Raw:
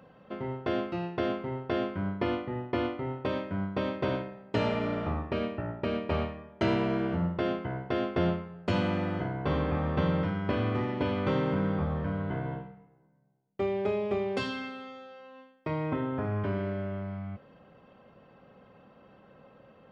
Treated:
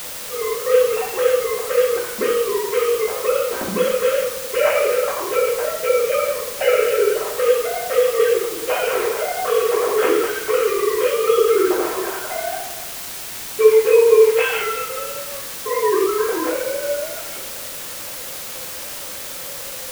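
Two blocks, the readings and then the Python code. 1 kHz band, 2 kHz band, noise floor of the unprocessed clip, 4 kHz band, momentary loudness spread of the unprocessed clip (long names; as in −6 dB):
+11.0 dB, +13.5 dB, −59 dBFS, +14.5 dB, 9 LU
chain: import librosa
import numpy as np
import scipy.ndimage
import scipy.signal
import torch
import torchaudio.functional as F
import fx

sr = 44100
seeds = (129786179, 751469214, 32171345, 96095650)

y = fx.sine_speech(x, sr)
y = fx.rev_double_slope(y, sr, seeds[0], early_s=0.53, late_s=2.4, knee_db=-17, drr_db=-6.5)
y = fx.quant_dither(y, sr, seeds[1], bits=6, dither='triangular')
y = F.gain(torch.from_numpy(y), 5.0).numpy()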